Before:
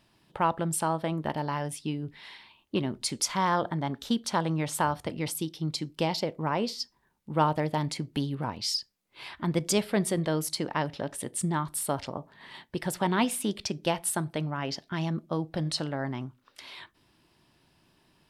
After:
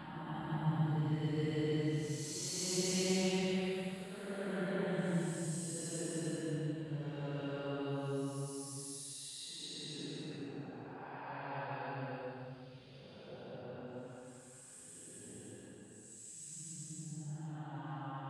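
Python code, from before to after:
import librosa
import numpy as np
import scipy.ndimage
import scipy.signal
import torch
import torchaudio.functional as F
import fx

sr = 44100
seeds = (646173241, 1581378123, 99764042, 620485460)

y = fx.doppler_pass(x, sr, speed_mps=41, closest_m=15.0, pass_at_s=7.44)
y = fx.paulstretch(y, sr, seeds[0], factor=7.4, window_s=0.25, from_s=8.49)
y = F.gain(torch.from_numpy(y), 2.0).numpy()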